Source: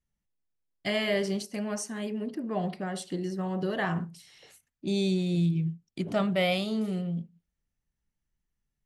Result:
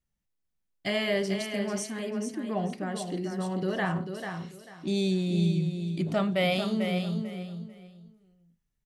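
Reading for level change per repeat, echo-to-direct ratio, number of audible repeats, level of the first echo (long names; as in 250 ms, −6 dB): −12.5 dB, −6.5 dB, 3, −7.0 dB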